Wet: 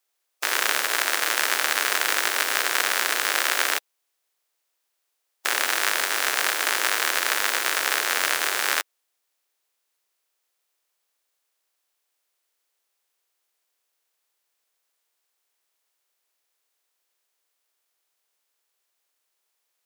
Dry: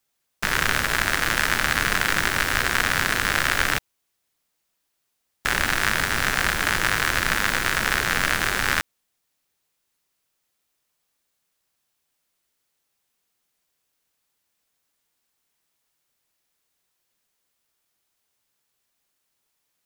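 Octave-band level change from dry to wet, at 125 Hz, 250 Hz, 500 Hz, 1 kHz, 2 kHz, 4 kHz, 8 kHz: under -30 dB, -10.5 dB, -1.0 dB, -1.5 dB, -2.5 dB, +1.0 dB, +3.0 dB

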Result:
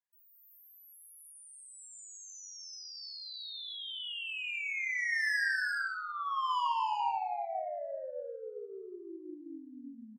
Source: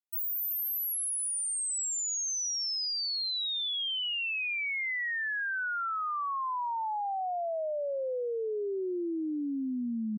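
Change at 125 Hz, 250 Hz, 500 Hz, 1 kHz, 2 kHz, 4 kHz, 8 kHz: n/a, under -10 dB, -8.5 dB, -0.5 dB, -0.5 dB, -9.0 dB, -17.5 dB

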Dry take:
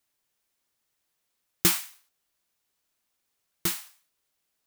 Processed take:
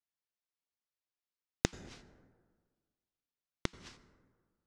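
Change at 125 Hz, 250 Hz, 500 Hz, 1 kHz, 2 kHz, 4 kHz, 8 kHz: -3.5, -5.5, -2.5, -7.5, -9.5, -13.5, -17.0 dB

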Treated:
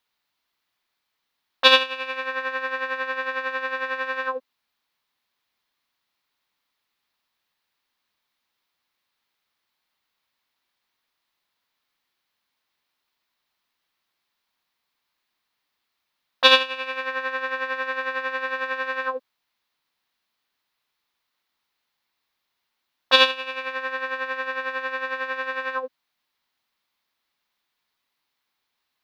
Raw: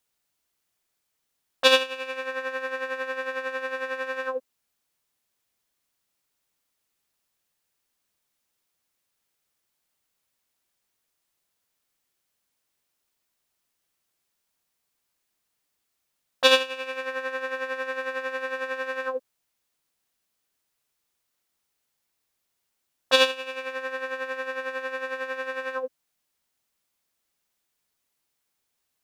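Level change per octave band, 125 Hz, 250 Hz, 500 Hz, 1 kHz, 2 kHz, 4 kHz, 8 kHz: n/a, +0.5 dB, -1.0 dB, +6.0 dB, +4.5 dB, +5.0 dB, -6.0 dB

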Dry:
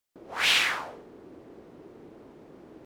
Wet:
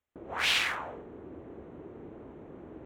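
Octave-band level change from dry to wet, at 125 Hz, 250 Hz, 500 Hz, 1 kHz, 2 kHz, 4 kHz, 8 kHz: +4.0, +1.5, +0.5, -2.5, -4.0, -4.5, -5.5 dB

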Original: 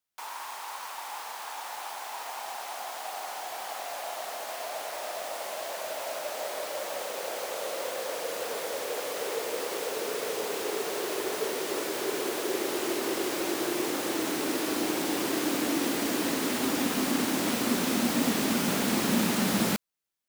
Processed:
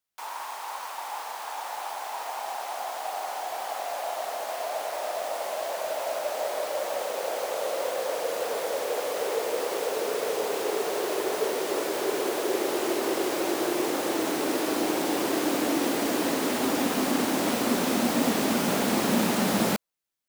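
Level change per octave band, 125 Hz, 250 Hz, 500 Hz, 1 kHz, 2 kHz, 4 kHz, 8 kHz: +0.5, +2.0, +4.5, +4.5, +1.0, +0.5, 0.0 dB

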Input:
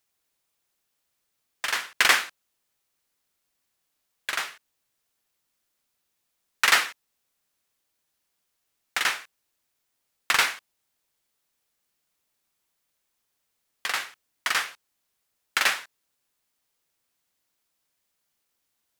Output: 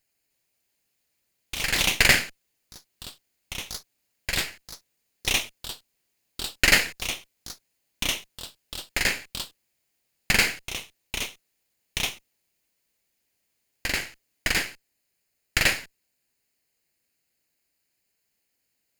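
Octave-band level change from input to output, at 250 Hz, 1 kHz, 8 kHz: +13.5, -5.0, +4.0 dB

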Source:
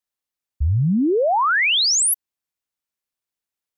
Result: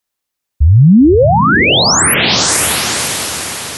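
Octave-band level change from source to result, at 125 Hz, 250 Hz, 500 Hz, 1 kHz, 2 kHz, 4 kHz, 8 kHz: +13.0, +13.0, +10.5, +8.5, +9.0, +9.5, +9.0 dB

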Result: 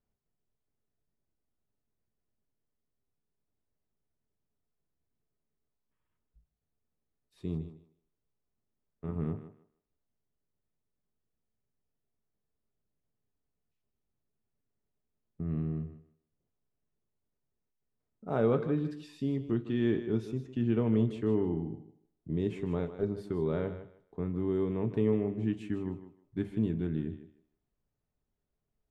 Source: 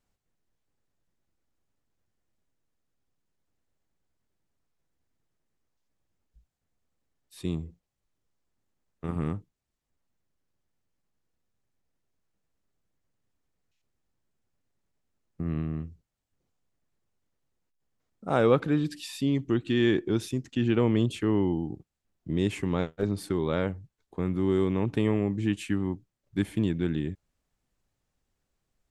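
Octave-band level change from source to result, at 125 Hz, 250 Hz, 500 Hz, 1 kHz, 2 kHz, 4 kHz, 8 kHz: -4.0 dB, -4.5 dB, -4.0 dB, -8.5 dB, -11.0 dB, -14.0 dB, under -15 dB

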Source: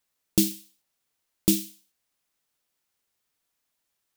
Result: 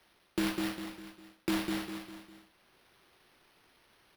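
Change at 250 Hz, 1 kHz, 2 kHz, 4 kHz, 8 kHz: -5.5 dB, n/a, +8.0 dB, -5.5 dB, -16.0 dB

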